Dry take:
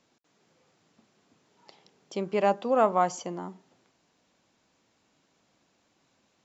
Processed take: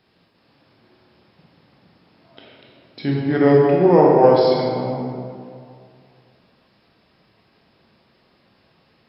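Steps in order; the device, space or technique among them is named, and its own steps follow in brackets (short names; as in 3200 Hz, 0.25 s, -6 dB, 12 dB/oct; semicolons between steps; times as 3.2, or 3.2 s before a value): slowed and reverbed (varispeed -29%; reverb RT60 2.3 s, pre-delay 18 ms, DRR -3.5 dB); gain +6 dB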